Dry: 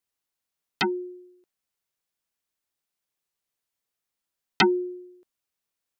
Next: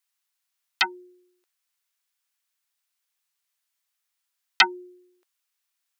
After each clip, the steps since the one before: HPF 1100 Hz 12 dB/oct; gain +5.5 dB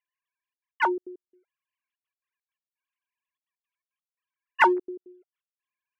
sine-wave speech; in parallel at -9 dB: overloaded stage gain 23 dB; on the sum: step gate "xxxxxx.x.xx.x..x" 169 bpm -60 dB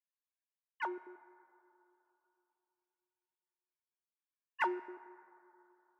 resonator 85 Hz, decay 1.1 s, harmonics odd, mix 50%; plate-style reverb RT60 3.2 s, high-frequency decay 0.3×, DRR 16.5 dB; gain -9 dB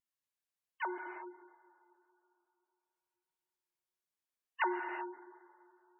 vibrato 1.6 Hz 28 cents; non-linear reverb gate 0.41 s flat, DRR 4 dB; spectral gate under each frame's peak -25 dB strong

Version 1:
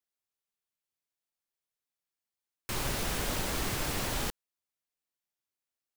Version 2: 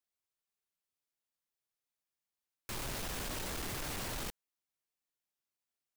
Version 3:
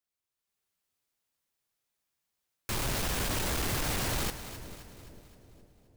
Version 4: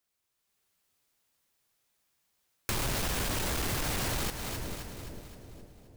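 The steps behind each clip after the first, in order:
hard clip -35.5 dBFS, distortion -7 dB; gain -2 dB
bell 82 Hz +3.5 dB 1.9 oct; AGC gain up to 7.5 dB; on a send: split-band echo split 640 Hz, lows 0.454 s, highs 0.262 s, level -12 dB
compressor 5:1, threshold -38 dBFS, peak gain reduction 9 dB; gain +7.5 dB

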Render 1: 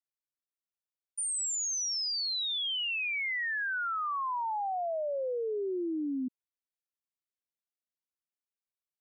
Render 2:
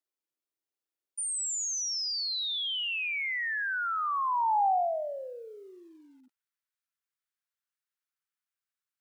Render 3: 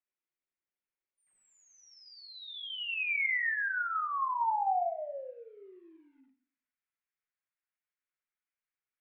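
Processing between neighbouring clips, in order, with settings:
low shelf 140 Hz +8.5 dB; high-pass sweep 330 Hz -> 1400 Hz, 2.38–6.31; lo-fi delay 92 ms, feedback 35%, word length 10-bit, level -14 dB
ladder low-pass 2700 Hz, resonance 45%; shoebox room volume 250 m³, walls furnished, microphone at 0.97 m; gain +3 dB

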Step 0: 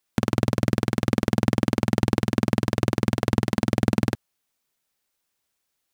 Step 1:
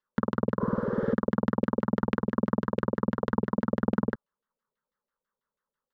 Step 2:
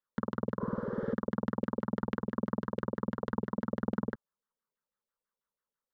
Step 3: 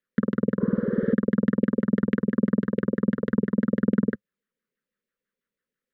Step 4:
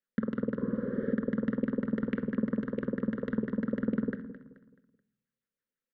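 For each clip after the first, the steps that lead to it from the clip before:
fixed phaser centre 480 Hz, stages 8; LFO low-pass saw down 6.1 Hz 460–2700 Hz; spectral repair 0.63–1.11, 310–8700 Hz both; gain -3 dB
notch 2500 Hz, Q 8.5; gain -6.5 dB
EQ curve 110 Hz 0 dB, 200 Hz +9 dB, 520 Hz +4 dB, 800 Hz -17 dB, 1800 Hz +7 dB, 5500 Hz -7 dB; gain +4 dB
feedback echo 0.215 s, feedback 37%, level -13.5 dB; on a send at -12.5 dB: reverb RT60 0.70 s, pre-delay 4 ms; on the sum: gain -7.5 dB

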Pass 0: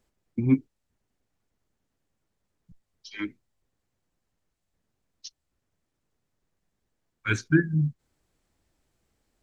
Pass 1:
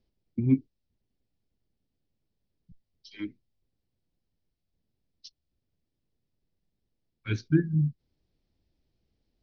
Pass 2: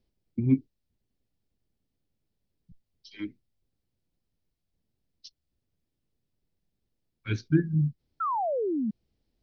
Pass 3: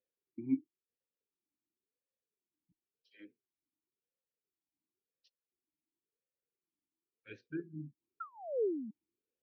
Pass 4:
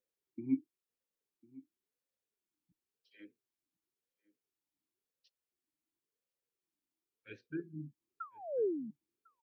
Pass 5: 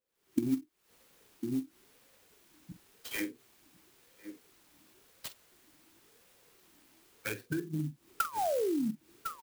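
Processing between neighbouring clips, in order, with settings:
steep low-pass 5300 Hz 48 dB/oct; bell 1300 Hz -14.5 dB 2.1 oct
painted sound fall, 8.2–8.91, 200–1400 Hz -28 dBFS
vowel sweep e-u 0.95 Hz; gain -2 dB
outdoor echo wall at 180 m, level -21 dB
recorder AGC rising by 79 dB/s; doubler 46 ms -12.5 dB; clock jitter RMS 0.046 ms

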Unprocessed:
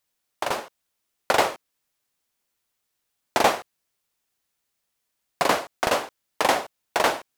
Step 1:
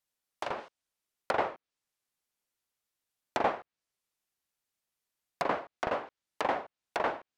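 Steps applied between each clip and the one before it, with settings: treble ducked by the level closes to 1900 Hz, closed at -21.5 dBFS; gain -8.5 dB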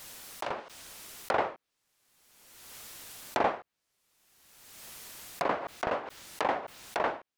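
backwards sustainer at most 34 dB/s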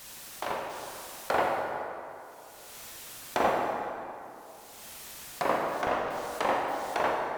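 plate-style reverb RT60 2.8 s, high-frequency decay 0.6×, DRR -0.5 dB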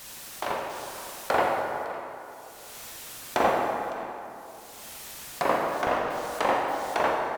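echo 0.557 s -17 dB; gain +3 dB

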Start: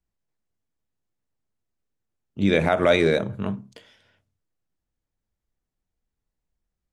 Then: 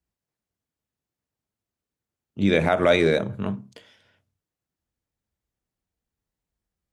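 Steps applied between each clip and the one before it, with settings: HPF 49 Hz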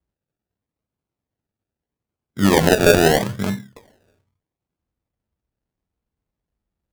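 low-pass opened by the level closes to 1400 Hz, open at -17 dBFS; decimation with a swept rate 33×, swing 60% 0.78 Hz; gain +5 dB

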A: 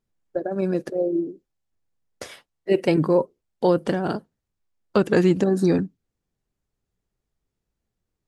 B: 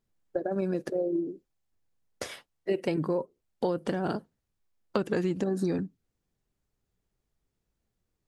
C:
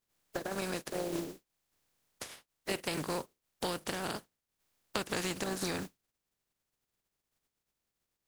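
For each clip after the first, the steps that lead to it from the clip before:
compressor 5:1, threshold -26 dBFS, peak gain reduction 11.5 dB
spectral contrast lowered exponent 0.42; gain -7 dB

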